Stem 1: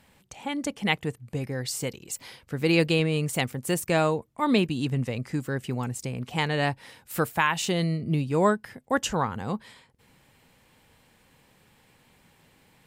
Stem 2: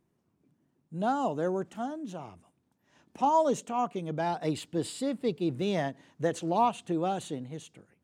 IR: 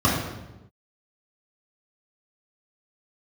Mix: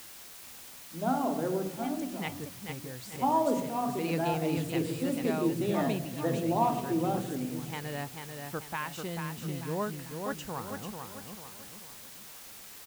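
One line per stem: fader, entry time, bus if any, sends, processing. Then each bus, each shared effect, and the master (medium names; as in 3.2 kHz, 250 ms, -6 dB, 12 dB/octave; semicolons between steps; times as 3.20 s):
-11.5 dB, 1.35 s, no send, echo send -5.5 dB, none
-3.5 dB, 0.00 s, send -23 dB, no echo send, none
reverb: on, RT60 1.0 s, pre-delay 3 ms
echo: feedback delay 441 ms, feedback 44%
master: treble shelf 3.3 kHz -7 dB; word length cut 8-bit, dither triangular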